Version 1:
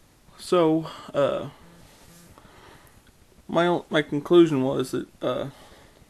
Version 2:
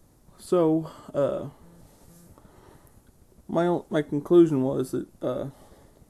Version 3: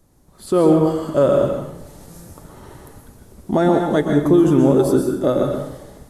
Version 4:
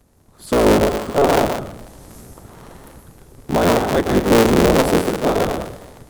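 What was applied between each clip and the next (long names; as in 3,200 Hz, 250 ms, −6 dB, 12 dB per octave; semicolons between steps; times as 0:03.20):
parametric band 2,700 Hz −13.5 dB 2.3 octaves
brickwall limiter −17 dBFS, peak gain reduction 9.5 dB; automatic gain control gain up to 10.5 dB; convolution reverb RT60 0.75 s, pre-delay 113 ms, DRR 2.5 dB
sub-harmonics by changed cycles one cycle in 3, inverted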